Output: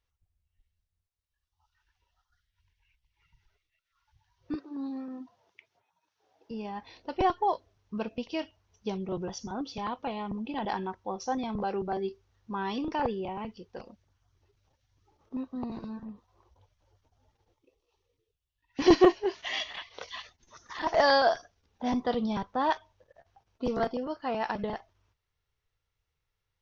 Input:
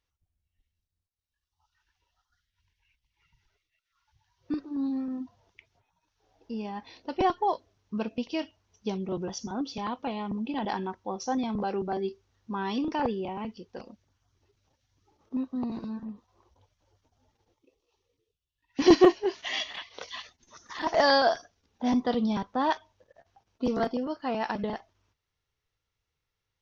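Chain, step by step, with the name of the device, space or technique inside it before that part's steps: 4.55–6.51 HPF 230 Hz 12 dB/oct; low shelf boost with a cut just above (low shelf 70 Hz +5.5 dB; bell 250 Hz -5 dB 0.85 oct); high shelf 4700 Hz -5.5 dB

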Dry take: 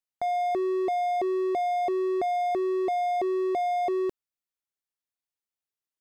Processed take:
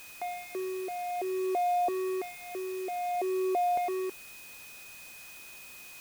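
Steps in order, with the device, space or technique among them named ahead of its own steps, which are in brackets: shortwave radio (BPF 330–2600 Hz; tremolo 0.55 Hz, depth 56%; LFO notch saw up 0.53 Hz 490–2100 Hz; whine 2500 Hz -49 dBFS; white noise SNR 17 dB)

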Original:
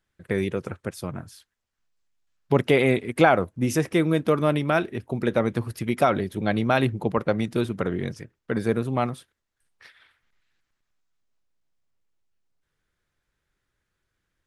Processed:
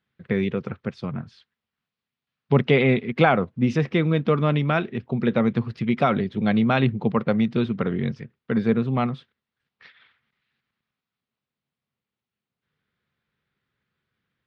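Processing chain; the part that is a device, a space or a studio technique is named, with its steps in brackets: guitar cabinet (speaker cabinet 110–4100 Hz, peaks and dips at 140 Hz +5 dB, 220 Hz +6 dB, 320 Hz -6 dB, 610 Hz -5 dB, 890 Hz -3 dB, 1600 Hz -3 dB); gain +2 dB

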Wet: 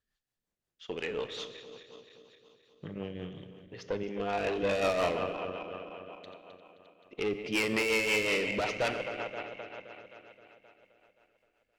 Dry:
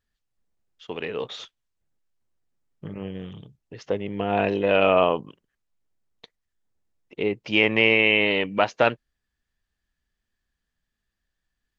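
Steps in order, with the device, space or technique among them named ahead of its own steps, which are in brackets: regenerating reverse delay 0.131 s, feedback 79%, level -13 dB; 4.03–4.63 HPF 210 Hz 12 dB/oct; low shelf 210 Hz -6.5 dB; overdriven rotary cabinet (tube stage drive 23 dB, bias 0.3; rotary speaker horn 5.5 Hz); Schroeder reverb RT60 1.1 s, combs from 29 ms, DRR 13.5 dB

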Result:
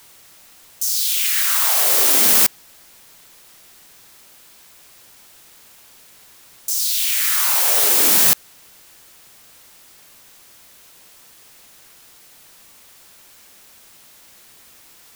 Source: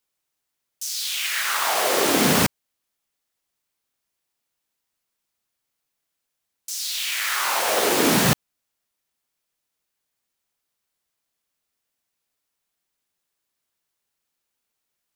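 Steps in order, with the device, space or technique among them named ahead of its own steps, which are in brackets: turntable without a phono preamp (RIAA curve recording; white noise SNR 25 dB); gain -4 dB

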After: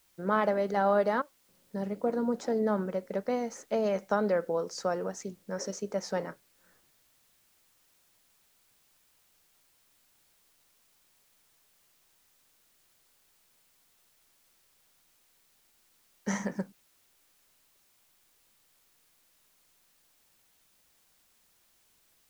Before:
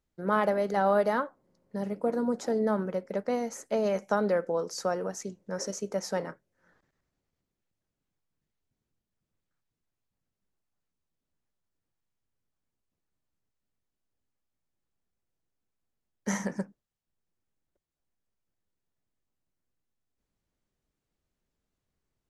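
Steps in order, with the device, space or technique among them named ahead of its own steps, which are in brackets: worn cassette (LPF 6800 Hz; wow and flutter 24 cents; level dips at 1.22, 0.264 s -16 dB; white noise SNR 32 dB); gain -1 dB

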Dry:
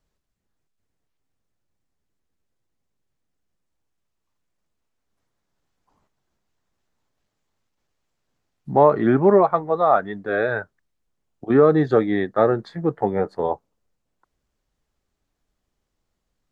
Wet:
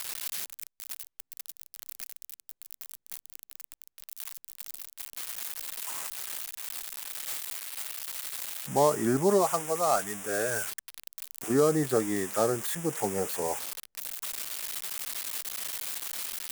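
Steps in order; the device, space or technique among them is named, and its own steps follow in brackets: budget class-D amplifier (switching dead time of 0.11 ms; switching spikes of -9 dBFS); gain -9 dB

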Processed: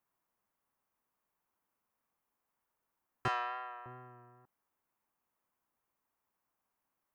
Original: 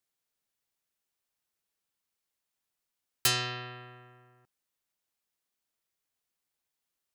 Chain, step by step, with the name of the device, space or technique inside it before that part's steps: 3.28–3.86 HPF 580 Hz 24 dB/oct; cassette deck with a dirty head (tape spacing loss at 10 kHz 30 dB; wow and flutter 28 cents; white noise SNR 35 dB); ten-band EQ 250 Hz +4 dB, 1000 Hz +10 dB, 4000 Hz -11 dB, 8000 Hz -6 dB

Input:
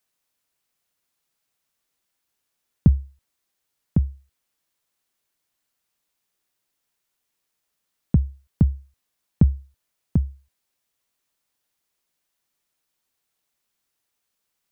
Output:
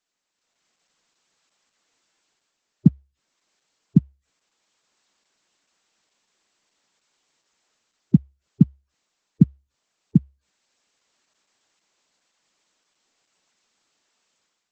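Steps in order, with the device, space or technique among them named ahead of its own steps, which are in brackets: noise-suppressed video call (HPF 160 Hz 24 dB/oct; spectral gate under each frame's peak -15 dB strong; AGC gain up to 12 dB; Opus 12 kbps 48000 Hz)

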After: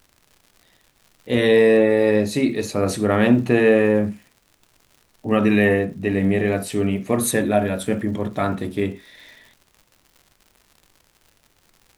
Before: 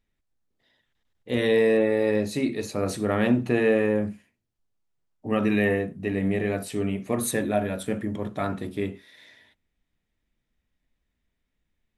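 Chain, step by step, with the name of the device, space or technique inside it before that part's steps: vinyl LP (crackle 130/s -45 dBFS; pink noise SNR 43 dB); gain +6 dB

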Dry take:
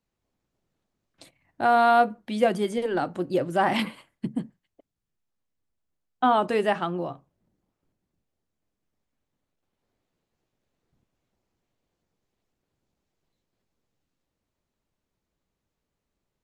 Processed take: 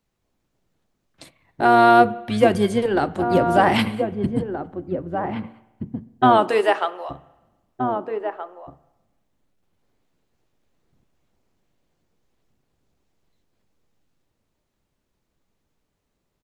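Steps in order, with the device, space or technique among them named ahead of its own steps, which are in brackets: octave pedal (harmoniser -12 st -8 dB); 6.37–7.09 HPF 210 Hz -> 710 Hz 24 dB/oct; outdoor echo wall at 270 m, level -7 dB; spring tank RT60 1.1 s, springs 31/44 ms, chirp 65 ms, DRR 18.5 dB; gain +5.5 dB

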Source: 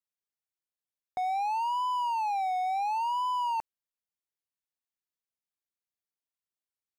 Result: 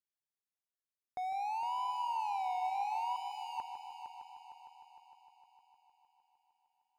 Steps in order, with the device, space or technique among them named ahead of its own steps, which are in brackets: 3.16–3.58 elliptic high-pass 2200 Hz; multi-head tape echo (multi-head echo 0.153 s, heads first and third, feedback 66%, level -10 dB; wow and flutter 9 cents); gain -7.5 dB

